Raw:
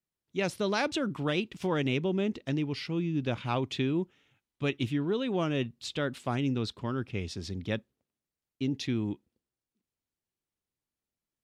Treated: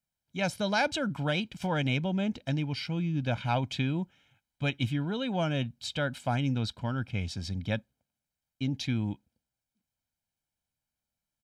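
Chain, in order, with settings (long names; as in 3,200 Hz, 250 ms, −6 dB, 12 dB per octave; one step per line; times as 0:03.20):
comb filter 1.3 ms, depth 72%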